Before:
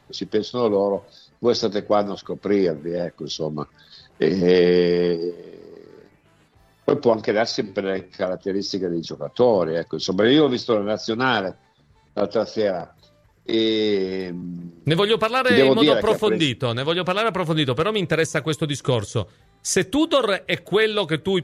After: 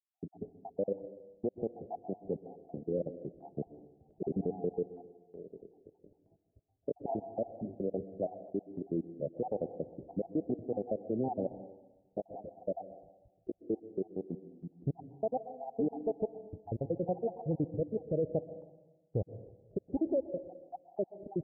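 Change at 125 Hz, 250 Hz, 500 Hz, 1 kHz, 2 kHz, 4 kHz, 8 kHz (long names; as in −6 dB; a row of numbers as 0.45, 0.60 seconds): −14.0 dB, −15.0 dB, −16.5 dB, −18.0 dB, below −40 dB, below −40 dB, below −40 dB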